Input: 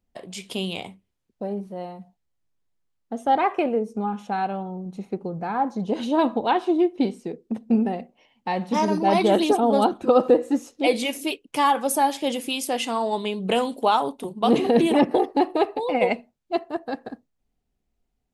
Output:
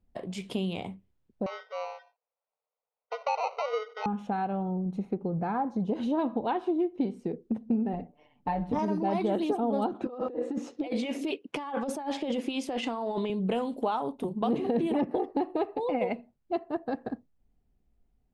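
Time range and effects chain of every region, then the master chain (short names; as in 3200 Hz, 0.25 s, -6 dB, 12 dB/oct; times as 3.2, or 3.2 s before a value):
1.46–4.06 sample-rate reducer 1700 Hz + brick-wall FIR band-pass 430–6400 Hz + air absorption 71 m
7.93–8.79 high shelf 2200 Hz -7.5 dB + comb 6.8 ms, depth 99% + AM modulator 150 Hz, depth 30%
9.94–13.3 BPF 210–6100 Hz + negative-ratio compressor -30 dBFS
whole clip: low shelf 230 Hz +7 dB; compressor 3:1, threshold -28 dBFS; high shelf 3100 Hz -11.5 dB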